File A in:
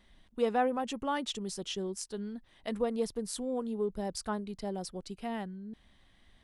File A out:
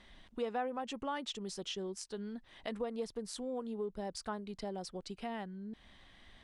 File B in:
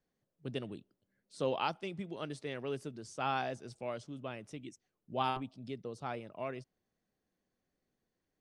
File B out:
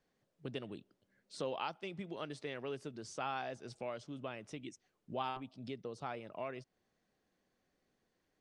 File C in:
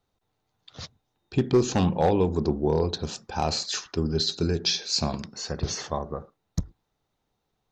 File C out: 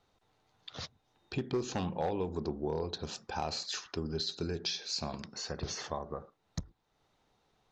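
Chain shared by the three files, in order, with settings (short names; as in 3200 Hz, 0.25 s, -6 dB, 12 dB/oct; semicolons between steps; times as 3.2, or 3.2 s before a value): low shelf 350 Hz -6 dB; compressor 2:1, threshold -52 dBFS; air absorption 53 m; gain +7.5 dB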